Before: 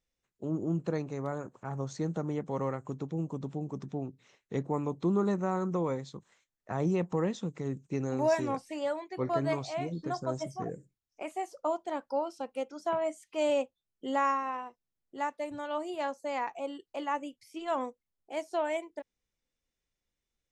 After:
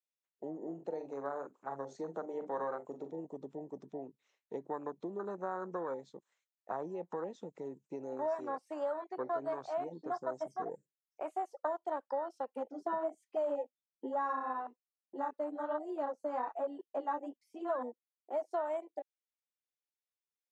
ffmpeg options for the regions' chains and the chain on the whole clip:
-filter_complex "[0:a]asettb=1/sr,asplit=3[a][b][c];[a]atrim=end=0.574[d];[b]atrim=start=0.57:end=3.25,asetpts=PTS-STARTPTS,afade=t=in:d=0.004:c=qsin,afade=t=out:st=2.676:d=0.004:c=qsin,highpass=150,bandreject=f=50:t=h:w=6,bandreject=f=100:t=h:w=6,bandreject=f=150:t=h:w=6,bandreject=f=200:t=h:w=6,bandreject=f=250:t=h:w=6,bandreject=f=300:t=h:w=6,bandreject=f=350:t=h:w=6,bandreject=f=400:t=h:w=6,aecho=1:1:43|58:0.335|0.112,atrim=end_sample=118188[e];[c]atrim=start=3.246[f];[d][e]acrossfade=d=0.004:c1=hsin:c2=qsin[g];[g][f]acrossfade=d=0.004:c1=qsin:c2=hsin,asettb=1/sr,asplit=3[h][i][j];[h]atrim=end=12.564[k];[i]atrim=start=12.56:end=18.51,asetpts=PTS-STARTPTS,afade=t=in:d=0.004:c=qsin,afade=t=out:st=5.946:d=0.004:c=qsin,equalizer=f=200:w=0.53:g=13,flanger=delay=4.6:depth=8.8:regen=0:speed=1.2:shape=sinusoidal[l];[j]atrim=start=18.506[m];[k][l]acrossfade=d=0.004:c1=hsin:c2=qsin[n];[n][m]acrossfade=d=0.004:c1=qsin:c2=hsin,acompressor=threshold=-32dB:ratio=8,afwtdn=0.01,highpass=470,volume=2.5dB"

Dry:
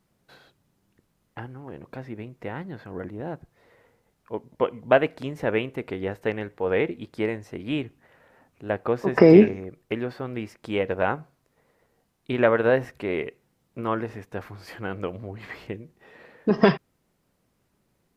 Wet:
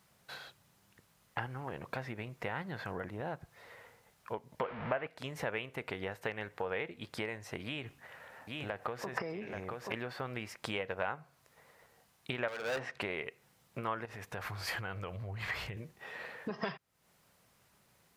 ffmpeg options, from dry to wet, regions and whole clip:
-filter_complex "[0:a]asettb=1/sr,asplit=3[a][b][c];[a]atrim=end=4.634[d];[b]atrim=start=4.63:end=5.07,asetpts=PTS-STARTPTS,afade=t=in:d=0.004:c=qsin,afade=t=out:st=0.436:d=0.004:c=qsin,aeval=exprs='val(0)+0.5*0.0447*sgn(val(0))':c=same,lowpass=f=2.4k:w=0.5412,lowpass=f=2.4k:w=1.3066[e];[c]atrim=start=5.066[f];[d][e]acrossfade=d=0.004:c1=hsin:c2=qsin[g];[g][f]acrossfade=d=0.004:c1=qsin:c2=hsin,asettb=1/sr,asplit=3[h][i][j];[h]atrim=end=7.644[k];[i]atrim=start=7.64:end=9.94,asetpts=PTS-STARTPTS,afade=t=in:d=0.004:c=qsin,afade=t=out:st=2.296:d=0.004:c=qsin,acompressor=threshold=-35dB:ratio=2.5:attack=3.2:release=140:knee=1:detection=peak,aecho=1:1:830:0.501,atrim=end_sample=101430[l];[j]atrim=start=9.936[m];[k][l]acrossfade=d=0.004:c1=hsin:c2=qsin[n];[n][m]acrossfade=d=0.004:c1=qsin:c2=hsin,asettb=1/sr,asplit=3[o][p][q];[o]atrim=end=12.484[r];[p]atrim=start=12.48:end=13.01,asetpts=PTS-STARTPTS,afade=t=in:d=0.004:c=qsin,afade=t=out:st=0.526:d=0.004:c=qsin,highpass=170,lowpass=5k,volume=24.5dB,asoftclip=hard,volume=-24.5dB[s];[q]atrim=start=13.006[t];[r][s]acrossfade=d=0.004:c1=hsin:c2=qsin[u];[u][t]acrossfade=d=0.004:c1=qsin:c2=hsin,asettb=1/sr,asplit=3[v][w][x];[v]atrim=end=14.054[y];[w]atrim=start=14.05:end=15.77,asetpts=PTS-STARTPTS,afade=t=in:d=0.004:c=qsin,afade=t=out:st=1.716:d=0.004:c=qsin,asubboost=boost=8:cutoff=120,acompressor=threshold=-38dB:ratio=4:attack=3.2:release=140:knee=1:detection=peak[z];[x]atrim=start=15.766[aa];[y][z]acrossfade=d=0.004:c1=hsin:c2=qsin[ab];[ab][aa]acrossfade=d=0.004:c1=qsin:c2=hsin,acompressor=threshold=-36dB:ratio=6,highpass=f=170:p=1,equalizer=f=300:t=o:w=1.6:g=-12,volume=7.5dB"

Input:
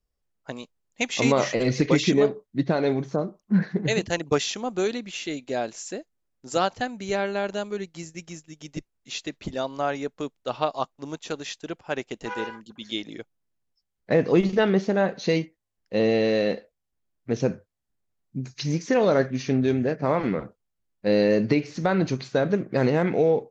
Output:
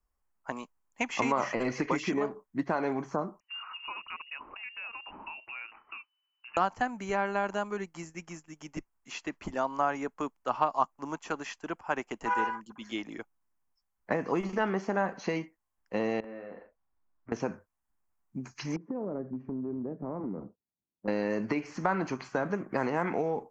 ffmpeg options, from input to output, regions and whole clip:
-filter_complex "[0:a]asettb=1/sr,asplit=3[a][b][c];[a]atrim=end=3.404[d];[b]atrim=start=3.4:end=6.57,asetpts=PTS-STARTPTS,afade=t=in:d=0.004:c=qsin,afade=t=out:st=3.166:d=0.004:c=qsin,acompressor=threshold=-38dB:ratio=4:attack=3.2:release=140:knee=1:detection=peak,lowpass=f=2.6k:t=q:w=0.5098,lowpass=f=2.6k:t=q:w=0.6013,lowpass=f=2.6k:t=q:w=0.9,lowpass=f=2.6k:t=q:w=2.563,afreqshift=-3000[e];[c]atrim=start=6.566[f];[d][e]acrossfade=d=0.004:c1=hsin:c2=qsin[g];[g][f]acrossfade=d=0.004:c1=qsin:c2=hsin,asettb=1/sr,asplit=3[h][i][j];[h]atrim=end=16.204[k];[i]atrim=start=16.2:end=17.32,asetpts=PTS-STARTPTS,afade=t=in:d=0.004:c=qsin,afade=t=out:st=1.116:d=0.004:c=qsin,lowpass=2k,acompressor=threshold=-37dB:ratio=12:attack=3.2:release=140:knee=1:detection=peak,asplit=2[l][m];[m]adelay=40,volume=-4dB[n];[l][n]amix=inputs=2:normalize=0,atrim=end_sample=49392[o];[j]atrim=start=17.316[p];[k][o]acrossfade=d=0.004:c1=hsin:c2=qsin[q];[q][p]acrossfade=d=0.004:c1=qsin:c2=hsin,asettb=1/sr,asplit=3[r][s][t];[r]atrim=end=18.764[u];[s]atrim=start=18.76:end=21.08,asetpts=PTS-STARTPTS,afade=t=in:d=0.004:c=qsin,afade=t=out:st=2.316:d=0.004:c=qsin,asuperpass=centerf=210:order=4:qfactor=0.62,acompressor=threshold=-28dB:ratio=4:attack=3.2:release=140:knee=1:detection=peak[v];[t]atrim=start=21.076[w];[u][v]acrossfade=d=0.004:c1=hsin:c2=qsin[x];[x][w]acrossfade=d=0.004:c1=qsin:c2=hsin,bandreject=f=3.7k:w=6.8,acrossover=split=280|5400[y][z][aa];[y]acompressor=threshold=-32dB:ratio=4[ab];[z]acompressor=threshold=-26dB:ratio=4[ac];[aa]acompressor=threshold=-53dB:ratio=4[ad];[ab][ac][ad]amix=inputs=3:normalize=0,equalizer=f=125:t=o:w=1:g=-9,equalizer=f=500:t=o:w=1:g=-7,equalizer=f=1k:t=o:w=1:g=10,equalizer=f=4k:t=o:w=1:g=-10"

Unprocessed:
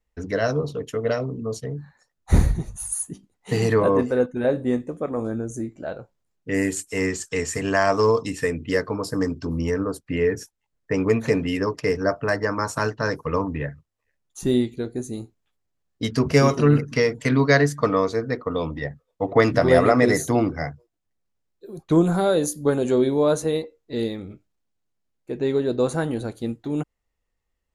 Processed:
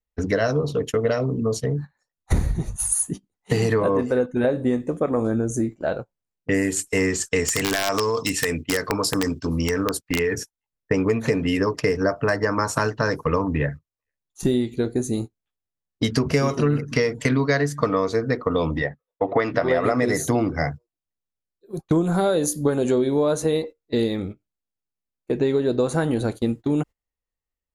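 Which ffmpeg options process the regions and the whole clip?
-filter_complex "[0:a]asettb=1/sr,asplit=3[a][b][c];[a]atrim=end=7.484[d];[b]atrim=start=7.48:end=10.38,asetpts=PTS-STARTPTS,afade=t=in:d=0.004:c=qsin,afade=t=out:st=2.896:d=0.004:c=qsin,tiltshelf=f=1.3k:g=-5,acompressor=threshold=-23dB:ratio=20:attack=3.2:release=140:knee=1:detection=peak,aeval=exprs='(mod(8.41*val(0)+1,2)-1)/8.41':c=same[e];[c]atrim=start=10.376[f];[d][e]acrossfade=d=0.004:c1=hsin:c2=qsin[g];[g][f]acrossfade=d=0.004:c1=qsin:c2=hsin,asettb=1/sr,asplit=3[h][i][j];[h]atrim=end=18.824[k];[i]atrim=start=18.82:end=19.84,asetpts=PTS-STARTPTS,afade=t=in:d=0.004:c=qsin,afade=t=out:st=1.016:d=0.004:c=qsin,lowpass=3.6k,lowshelf=f=240:g=-11[l];[j]atrim=start=19.836[m];[k][l]acrossfade=d=0.004:c1=hsin:c2=qsin[n];[n][m]acrossfade=d=0.004:c1=qsin:c2=hsin,agate=range=-19dB:threshold=-36dB:ratio=16:detection=peak,acompressor=threshold=-25dB:ratio=6,volume=7.5dB"

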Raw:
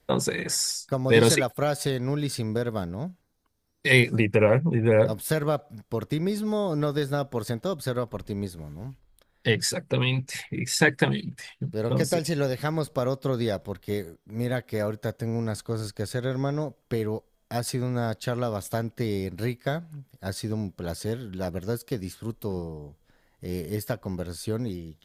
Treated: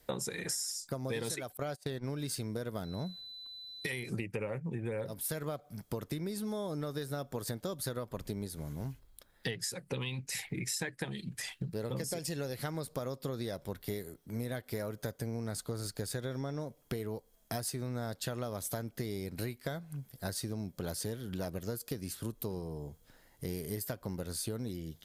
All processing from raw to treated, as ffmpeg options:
-filter_complex "[0:a]asettb=1/sr,asplit=3[a][b][c];[a]atrim=end=1.574[d];[b]atrim=start=1.57:end=2.04,asetpts=PTS-STARTPTS,afade=t=in:d=0.004:c=qsin,afade=t=out:st=0.466:d=0.004:c=qsin,agate=range=-25dB:threshold=-30dB:ratio=16:release=100:detection=peak,highshelf=f=6.1k:g=-8.5[e];[c]atrim=start=2.036[f];[d][e]acrossfade=d=0.004:c1=hsin:c2=qsin[g];[g][f]acrossfade=d=0.004:c1=qsin:c2=hsin,asettb=1/sr,asplit=3[h][i][j];[h]atrim=end=2.844[k];[i]atrim=start=2.84:end=4.09,asetpts=PTS-STARTPTS,afade=t=in:d=0.004:c=qsin,afade=t=out:st=1.246:d=0.004:c=qsin,bandreject=f=3.9k:w=5.4,acompressor=threshold=-27dB:ratio=4:attack=3.2:release=140:knee=1:detection=peak,aeval=exprs='val(0)+0.00398*sin(2*PI*4000*n/s)':c=same[l];[j]atrim=start=4.086[m];[k][l]acrossfade=d=0.004:c1=hsin:c2=qsin[n];[n][m]acrossfade=d=0.004:c1=qsin:c2=hsin,highshelf=f=6k:g=10.5,acompressor=threshold=-34dB:ratio=10"

